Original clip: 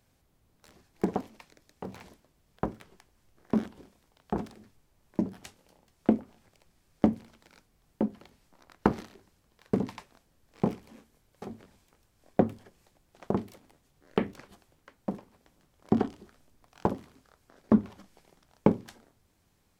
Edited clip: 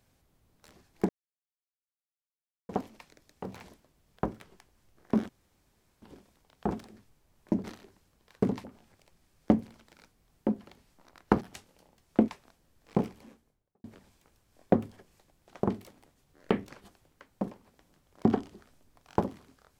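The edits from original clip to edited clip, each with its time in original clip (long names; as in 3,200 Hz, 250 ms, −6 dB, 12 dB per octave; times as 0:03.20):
0:01.09: splice in silence 1.60 s
0:03.69: splice in room tone 0.73 s
0:05.31–0:06.18: swap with 0:08.95–0:09.95
0:10.82–0:11.51: fade out and dull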